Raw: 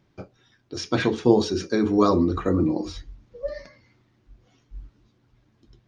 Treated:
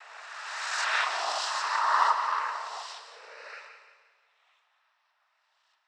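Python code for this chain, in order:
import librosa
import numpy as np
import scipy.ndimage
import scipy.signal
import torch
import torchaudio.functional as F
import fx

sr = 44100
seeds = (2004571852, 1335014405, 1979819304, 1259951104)

p1 = fx.spec_swells(x, sr, rise_s=2.19)
p2 = fx.env_lowpass(p1, sr, base_hz=2900.0, full_db=-15.5)
p3 = scipy.signal.sosfilt(scipy.signal.ellip(4, 1.0, 70, 890.0, 'highpass', fs=sr, output='sos'), p2)
p4 = fx.high_shelf(p3, sr, hz=5400.0, db=-11.5)
p5 = fx.noise_vocoder(p4, sr, seeds[0], bands=12)
p6 = p5 + fx.echo_feedback(p5, sr, ms=175, feedback_pct=38, wet_db=-10, dry=0)
y = fx.rev_schroeder(p6, sr, rt60_s=1.9, comb_ms=29, drr_db=11.0)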